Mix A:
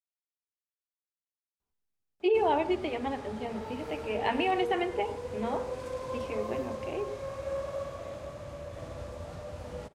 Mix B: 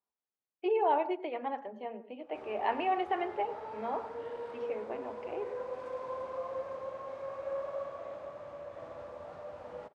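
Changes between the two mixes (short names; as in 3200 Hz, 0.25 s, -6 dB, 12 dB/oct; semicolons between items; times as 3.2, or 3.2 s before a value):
speech: entry -1.60 s; master: add band-pass 870 Hz, Q 0.84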